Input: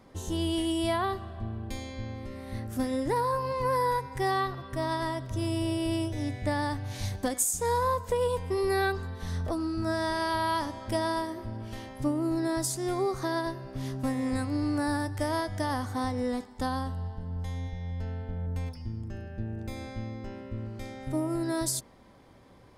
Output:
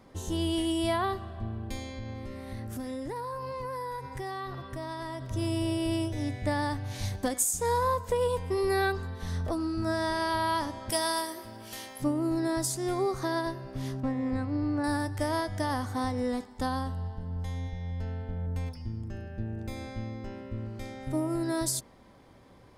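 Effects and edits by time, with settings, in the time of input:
0:01.93–0:05.22: downward compressor, threshold −33 dBFS
0:10.90–0:12.02: RIAA equalisation recording
0:14.00–0:14.84: head-to-tape spacing loss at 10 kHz 24 dB

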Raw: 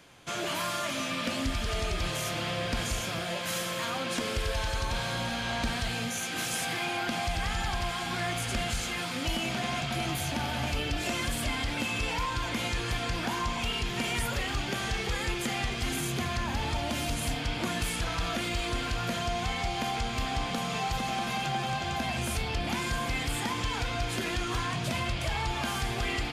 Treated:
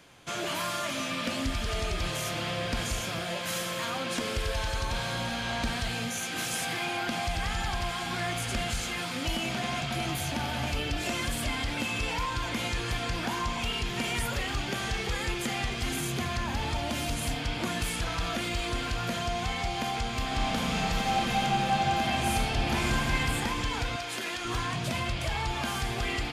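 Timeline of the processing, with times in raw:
0:20.24–0:23.18: thrown reverb, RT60 2.7 s, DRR −1 dB
0:23.96–0:24.45: high-pass filter 570 Hz 6 dB per octave

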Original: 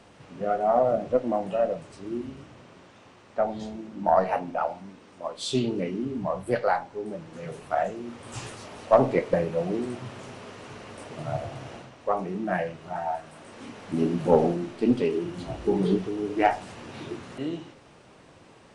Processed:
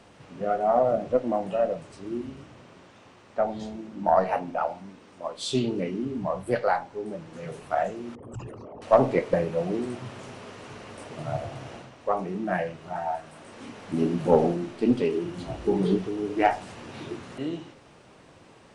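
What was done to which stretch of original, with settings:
0:08.15–0:08.82: spectral envelope exaggerated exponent 3

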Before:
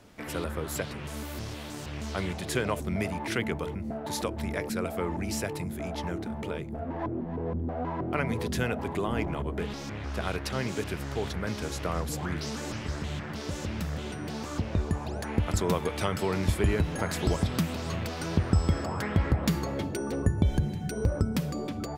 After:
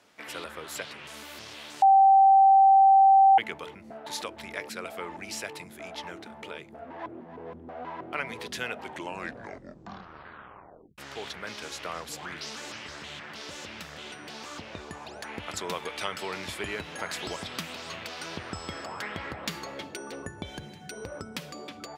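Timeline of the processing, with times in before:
0:01.82–0:03.38: beep over 778 Hz −10 dBFS
0:08.73: tape stop 2.25 s
whole clip: dynamic equaliser 3,100 Hz, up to +4 dB, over −50 dBFS, Q 1; high-pass filter 950 Hz 6 dB per octave; high-shelf EQ 9,800 Hz −8 dB

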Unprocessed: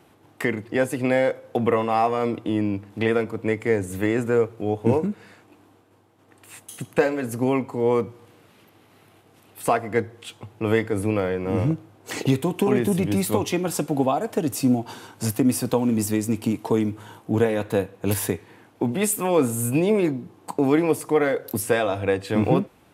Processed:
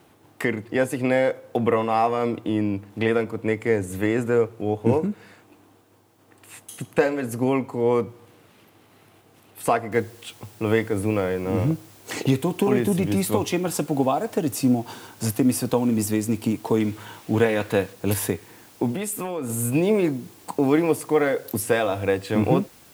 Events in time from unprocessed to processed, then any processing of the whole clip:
0:09.92: noise floor change −69 dB −52 dB
0:16.80–0:17.93: parametric band 2,300 Hz +6 dB 2.1 octaves
0:18.95–0:19.50: downward compressor 10 to 1, threshold −24 dBFS

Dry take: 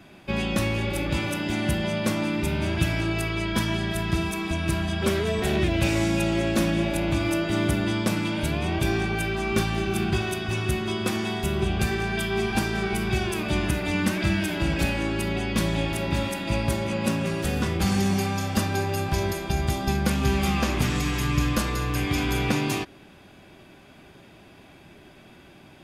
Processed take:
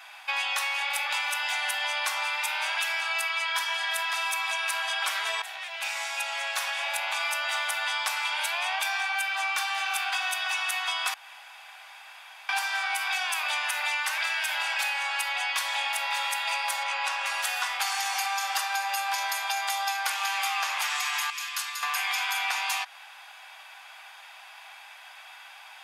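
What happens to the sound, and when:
0:05.42–0:07.64: fade in, from −16.5 dB
0:11.14–0:12.49: fill with room tone
0:16.83–0:17.26: high-frequency loss of the air 57 metres
0:21.30–0:21.83: guitar amp tone stack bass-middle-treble 5-5-5
whole clip: elliptic high-pass filter 800 Hz, stop band 60 dB; downward compressor, threshold −34 dBFS; level +8.5 dB

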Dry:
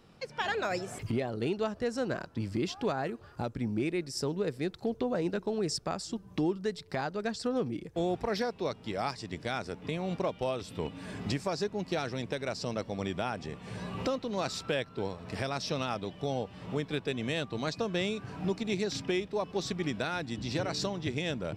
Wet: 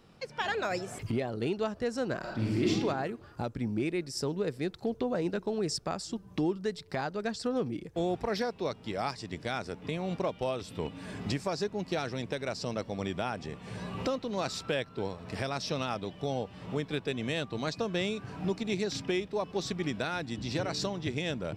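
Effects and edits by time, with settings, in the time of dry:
0:02.20–0:02.70: thrown reverb, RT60 0.94 s, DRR −5 dB

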